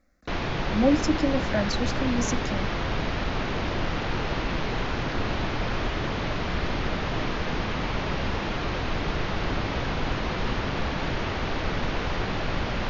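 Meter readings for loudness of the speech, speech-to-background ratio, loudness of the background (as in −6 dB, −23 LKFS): −27.0 LKFS, 2.0 dB, −29.0 LKFS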